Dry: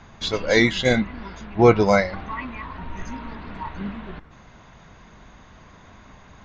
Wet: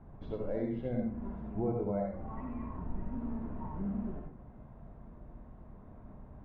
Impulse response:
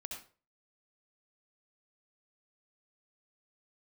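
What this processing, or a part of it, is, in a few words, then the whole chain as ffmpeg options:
television next door: -filter_complex "[0:a]acompressor=threshold=-28dB:ratio=4,lowpass=580[link_01];[1:a]atrim=start_sample=2205[link_02];[link_01][link_02]afir=irnorm=-1:irlink=0"

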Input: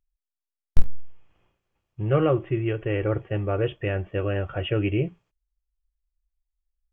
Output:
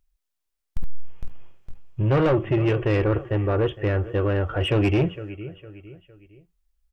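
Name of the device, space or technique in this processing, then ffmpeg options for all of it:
saturation between pre-emphasis and de-emphasis: -filter_complex "[0:a]asettb=1/sr,asplit=3[link_01][link_02][link_03];[link_01]atrim=end=3.044[link_04];[link_02]atrim=start=3.04:end=4.61,asetpts=PTS-STARTPTS,afade=type=in:duration=0.004:curve=qsin,afade=type=out:start_time=1.566:duration=0.004:curve=qsin,equalizer=frequency=160:width_type=o:width=0.67:gain=-11,equalizer=frequency=630:width_type=o:width=0.67:gain=-4,equalizer=frequency=2500:width_type=o:width=0.67:gain=-10[link_05];[link_03]atrim=start=4.606[link_06];[link_04][link_05]acrossfade=duration=0.004:curve1=hsin:curve2=qsin[link_07];[link_07][link_06]acrossfade=duration=0.004:curve1=qsin:curve2=hsin,highshelf=frequency=2400:gain=12,aecho=1:1:458|916|1374:0.106|0.0413|0.0161,asoftclip=type=tanh:threshold=-23.5dB,highshelf=frequency=2400:gain=-12,volume=8.5dB"

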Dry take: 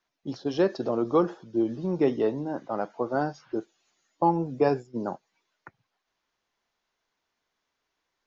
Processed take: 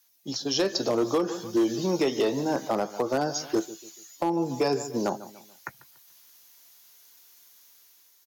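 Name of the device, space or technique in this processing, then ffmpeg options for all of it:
FM broadcast chain: -filter_complex "[0:a]highpass=55,asplit=2[link_01][link_02];[link_02]adelay=15,volume=-12dB[link_03];[link_01][link_03]amix=inputs=2:normalize=0,asplit=2[link_04][link_05];[link_05]adelay=144,lowpass=frequency=2100:poles=1,volume=-18dB,asplit=2[link_06][link_07];[link_07]adelay=144,lowpass=frequency=2100:poles=1,volume=0.38,asplit=2[link_08][link_09];[link_09]adelay=144,lowpass=frequency=2100:poles=1,volume=0.38[link_10];[link_04][link_06][link_08][link_10]amix=inputs=4:normalize=0,dynaudnorm=framelen=150:gausssize=13:maxgain=9.5dB,acrossover=split=280|650[link_11][link_12][link_13];[link_11]acompressor=threshold=-33dB:ratio=4[link_14];[link_12]acompressor=threshold=-19dB:ratio=4[link_15];[link_13]acompressor=threshold=-30dB:ratio=4[link_16];[link_14][link_15][link_16]amix=inputs=3:normalize=0,aemphasis=mode=production:type=75fm,alimiter=limit=-14dB:level=0:latency=1:release=200,asoftclip=type=hard:threshold=-17dB,lowpass=frequency=15000:width=0.5412,lowpass=frequency=15000:width=1.3066,aemphasis=mode=production:type=75fm"

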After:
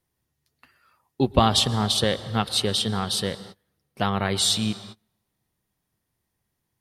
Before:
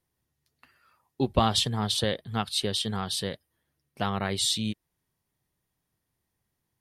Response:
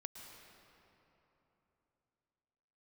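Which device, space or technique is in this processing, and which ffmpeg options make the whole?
keyed gated reverb: -filter_complex "[0:a]asplit=3[link_01][link_02][link_03];[1:a]atrim=start_sample=2205[link_04];[link_02][link_04]afir=irnorm=-1:irlink=0[link_05];[link_03]apad=whole_len=300282[link_06];[link_05][link_06]sidechaingate=range=-33dB:threshold=-56dB:ratio=16:detection=peak,volume=-3.5dB[link_07];[link_01][link_07]amix=inputs=2:normalize=0,volume=2dB"

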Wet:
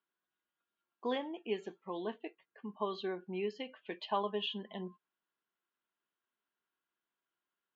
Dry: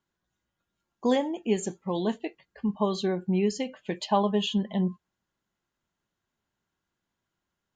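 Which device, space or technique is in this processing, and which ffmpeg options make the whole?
phone earpiece: -filter_complex "[0:a]highpass=440,equalizer=frequency=560:width_type=q:width=4:gain=-7,equalizer=frequency=820:width_type=q:width=4:gain=-6,equalizer=frequency=2000:width_type=q:width=4:gain=-4,lowpass=frequency=3400:width=0.5412,lowpass=frequency=3400:width=1.3066,asettb=1/sr,asplit=3[link_01][link_02][link_03];[link_01]atrim=end=1.904[link_04];[link_02]atrim=start=1.9:end=2.81,asetpts=PTS-STARTPTS,afade=type=in:duration=0.004:curve=qsin,afade=type=out:start_time=0.906:duration=0.004:curve=qsin,lowpass=frequency=2500:poles=1[link_05];[link_03]atrim=start=2.806[link_06];[link_04][link_05]acrossfade=duration=0.004:curve1=hsin:curve2=qsin[link_07];[link_07][link_06]acrossfade=duration=0.004:curve1=qsin:curve2=hsin,volume=-4dB"

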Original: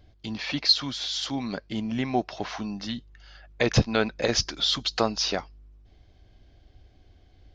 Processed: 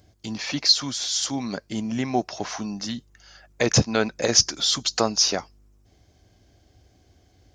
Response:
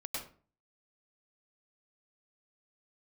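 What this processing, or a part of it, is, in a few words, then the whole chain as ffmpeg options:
budget condenser microphone: -af "highpass=80,highshelf=frequency=5100:width_type=q:width=1.5:gain=10.5,volume=2dB"

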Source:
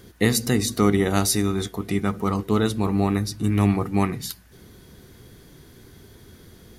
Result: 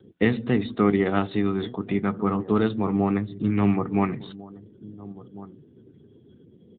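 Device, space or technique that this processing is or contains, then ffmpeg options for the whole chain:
mobile call with aggressive noise cancelling: -filter_complex "[0:a]asplit=3[link_01][link_02][link_03];[link_01]afade=type=out:start_time=0.6:duration=0.02[link_04];[link_02]asubboost=boost=6:cutoff=58,afade=type=in:start_time=0.6:duration=0.02,afade=type=out:start_time=1.27:duration=0.02[link_05];[link_03]afade=type=in:start_time=1.27:duration=0.02[link_06];[link_04][link_05][link_06]amix=inputs=3:normalize=0,highpass=120,asplit=2[link_07][link_08];[link_08]adelay=1399,volume=-17dB,highshelf=frequency=4000:gain=-31.5[link_09];[link_07][link_09]amix=inputs=2:normalize=0,afftdn=noise_reduction=26:noise_floor=-47" -ar 8000 -c:a libopencore_amrnb -b:a 10200

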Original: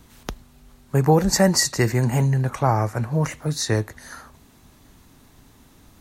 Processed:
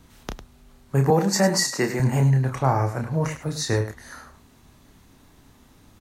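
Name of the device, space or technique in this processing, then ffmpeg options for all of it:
slapback doubling: -filter_complex "[0:a]asplit=3[link_01][link_02][link_03];[link_02]adelay=30,volume=-6dB[link_04];[link_03]adelay=102,volume=-11dB[link_05];[link_01][link_04][link_05]amix=inputs=3:normalize=0,asettb=1/sr,asplit=3[link_06][link_07][link_08];[link_06]atrim=end=1.104[link_09];[link_07]atrim=start=1.1:end=2,asetpts=PTS-STARTPTS,afade=type=in:duration=0.004:curve=qsin,afade=type=out:start_time=0.896:duration=0.004:curve=qsin,highpass=frequency=160:width=0.5412,highpass=frequency=160:width=1.3066[link_10];[link_08]atrim=start=1.996[link_11];[link_09][link_10]acrossfade=duration=0.004:curve1=hsin:curve2=qsin[link_12];[link_12][link_11]acrossfade=duration=0.004:curve1=qsin:curve2=hsin,highshelf=frequency=8500:gain=-4.5,volume=-2.5dB"

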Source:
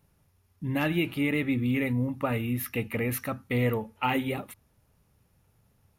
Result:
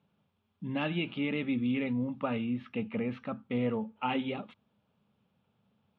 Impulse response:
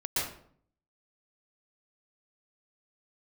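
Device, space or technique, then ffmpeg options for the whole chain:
kitchen radio: -filter_complex "[0:a]highpass=170,equalizer=frequency=210:width_type=q:width=4:gain=9,equalizer=frequency=330:width_type=q:width=4:gain=-5,equalizer=frequency=1900:width_type=q:width=4:gain=-8,equalizer=frequency=3300:width_type=q:width=4:gain=6,lowpass=frequency=3600:width=0.5412,lowpass=frequency=3600:width=1.3066,asettb=1/sr,asplit=3[link_01][link_02][link_03];[link_01]atrim=end=2.444[link_04];[link_02]atrim=start=2.44:end=4.1,asetpts=PTS-STARTPTS,afade=type=in:duration=0.004:curve=qsin,afade=type=out:start_time=1.656:duration=0.004:curve=qsin,highshelf=frequency=2800:gain=-9.5[link_05];[link_03]atrim=start=4.096[link_06];[link_04][link_05]acrossfade=duration=0.004:curve1=hsin:curve2=qsin[link_07];[link_07][link_06]acrossfade=duration=0.004:curve1=qsin:curve2=hsin,volume=-3.5dB"

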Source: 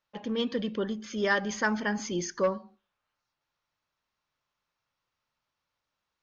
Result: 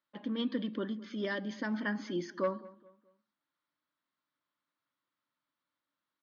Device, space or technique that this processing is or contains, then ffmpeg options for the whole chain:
kitchen radio: -filter_complex "[0:a]asettb=1/sr,asplit=3[link_01][link_02][link_03];[link_01]atrim=end=1.254[link_04];[link_02]atrim=start=1.25:end=1.74,asetpts=PTS-STARTPTS,afade=type=in:duration=0.004:curve=qsin,afade=type=out:start_time=0.486:duration=0.004:curve=qsin,equalizer=frequency=1300:width_type=o:width=1.1:gain=-11.5[link_05];[link_03]atrim=start=1.736[link_06];[link_04][link_05]acrossfade=duration=0.004:curve1=hsin:curve2=qsin[link_07];[link_07][link_06]acrossfade=duration=0.004:curve1=qsin:curve2=hsin,highpass=190,equalizer=frequency=290:width_type=q:width=4:gain=10,equalizer=frequency=440:width_type=q:width=4:gain=-9,equalizer=frequency=780:width_type=q:width=4:gain=-8,equalizer=frequency=2600:width_type=q:width=4:gain=-8,lowpass=frequency=4100:width=0.5412,lowpass=frequency=4100:width=1.3066,asplit=2[link_08][link_09];[link_09]adelay=212,lowpass=frequency=2100:poles=1,volume=-20dB,asplit=2[link_10][link_11];[link_11]adelay=212,lowpass=frequency=2100:poles=1,volume=0.38,asplit=2[link_12][link_13];[link_13]adelay=212,lowpass=frequency=2100:poles=1,volume=0.38[link_14];[link_08][link_10][link_12][link_14]amix=inputs=4:normalize=0,volume=-3dB"

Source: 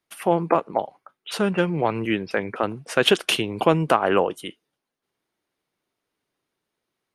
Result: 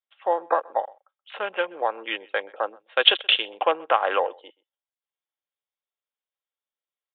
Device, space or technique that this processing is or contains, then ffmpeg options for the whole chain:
musical greeting card: -filter_complex "[0:a]afwtdn=0.0316,aecho=1:1:3.7:0.31,asplit=2[link_01][link_02];[link_02]adelay=128.3,volume=-25dB,highshelf=frequency=4000:gain=-2.89[link_03];[link_01][link_03]amix=inputs=2:normalize=0,aresample=8000,aresample=44100,highpass=frequency=510:width=0.5412,highpass=frequency=510:width=1.3066,equalizer=frequency=3400:width_type=o:width=0.48:gain=8,volume=-1dB"

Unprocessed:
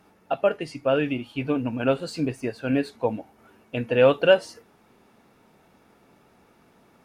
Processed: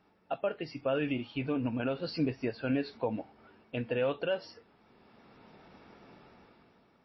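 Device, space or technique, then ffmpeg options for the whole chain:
low-bitrate web radio: -af "dynaudnorm=framelen=140:gausssize=11:maxgain=12dB,alimiter=limit=-11.5dB:level=0:latency=1:release=148,volume=-9dB" -ar 16000 -c:a libmp3lame -b:a 24k

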